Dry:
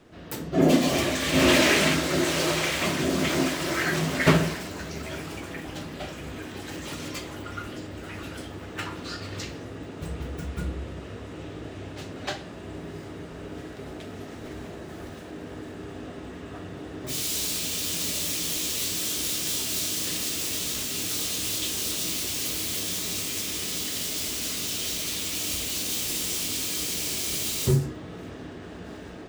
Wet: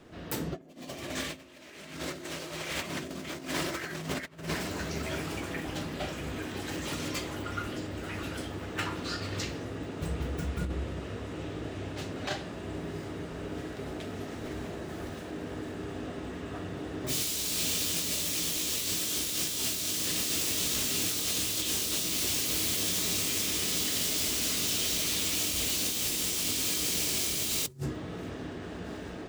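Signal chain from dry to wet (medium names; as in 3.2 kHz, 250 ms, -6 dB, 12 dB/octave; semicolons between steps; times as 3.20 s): compressor with a negative ratio -30 dBFS, ratio -0.5; trim -2 dB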